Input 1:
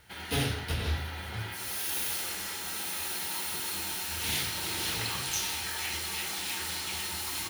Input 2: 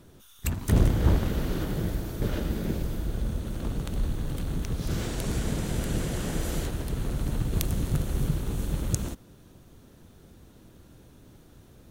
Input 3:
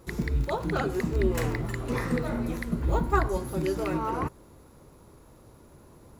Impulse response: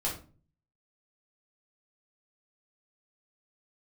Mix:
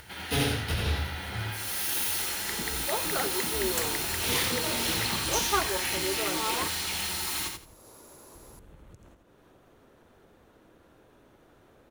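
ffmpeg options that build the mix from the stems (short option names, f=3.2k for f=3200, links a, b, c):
-filter_complex "[0:a]volume=2dB,asplit=2[a][b];[b]volume=-5dB[c];[1:a]acrossover=split=360 2600:gain=0.178 1 0.224[d][e][f];[d][e][f]amix=inputs=3:normalize=0,acrossover=split=180[g][h];[h]acompressor=threshold=-48dB:ratio=5[i];[g][i]amix=inputs=2:normalize=0,volume=-14.5dB,asplit=3[j][k][l];[j]atrim=end=7.74,asetpts=PTS-STARTPTS,afade=t=out:st=7.736:d=0.004:c=hsin[m];[k]atrim=start=7.74:end=8.35,asetpts=PTS-STARTPTS,volume=0[n];[l]atrim=start=8.35,asetpts=PTS-STARTPTS,afade=t=in:d=0.004:c=hsin[o];[m][n][o]concat=n=3:v=0:a=1,asplit=2[p][q];[q]volume=-9.5dB[r];[2:a]bass=f=250:g=-14,treble=f=4k:g=9,adelay=2400,volume=-1.5dB[s];[c][r]amix=inputs=2:normalize=0,aecho=0:1:84|168|252:1|0.19|0.0361[t];[a][p][s][t]amix=inputs=4:normalize=0,acompressor=mode=upward:threshold=-43dB:ratio=2.5"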